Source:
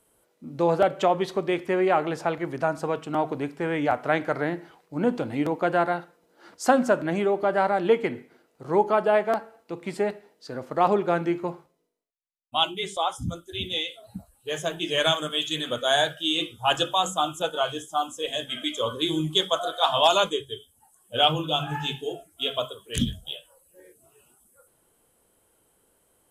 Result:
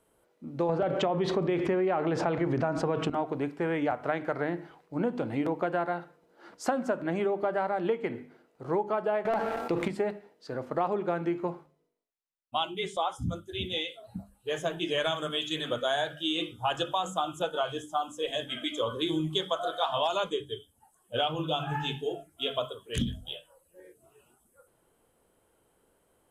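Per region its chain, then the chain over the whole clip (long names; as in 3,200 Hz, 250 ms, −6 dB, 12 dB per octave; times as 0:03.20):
0:00.69–0:03.10: low-pass filter 6,700 Hz + low-shelf EQ 380 Hz +5.5 dB + envelope flattener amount 70%
0:09.25–0:09.88: tuned comb filter 80 Hz, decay 1.7 s, mix 30% + leveller curve on the samples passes 2 + envelope flattener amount 70%
whole clip: high-shelf EQ 3,600 Hz −9.5 dB; mains-hum notches 50/100/150/200/250/300 Hz; downward compressor, threshold −25 dBFS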